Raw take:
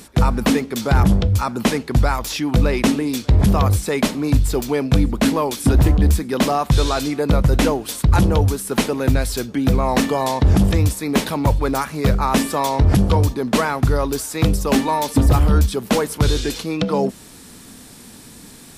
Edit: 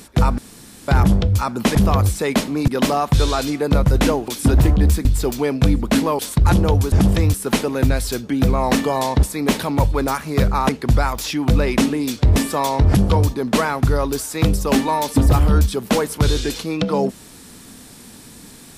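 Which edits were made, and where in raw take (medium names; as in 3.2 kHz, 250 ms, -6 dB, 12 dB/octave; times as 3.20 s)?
0.38–0.88 s: room tone
1.75–3.42 s: move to 12.36 s
4.35–5.49 s: swap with 6.26–7.86 s
10.48–10.90 s: move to 8.59 s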